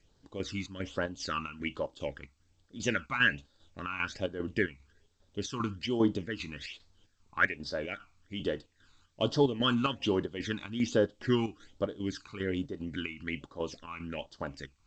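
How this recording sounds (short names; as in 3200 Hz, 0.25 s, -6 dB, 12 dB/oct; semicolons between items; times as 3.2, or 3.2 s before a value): phasing stages 12, 1.2 Hz, lowest notch 540–2400 Hz; chopped level 2.5 Hz, depth 60%, duty 65%; G.722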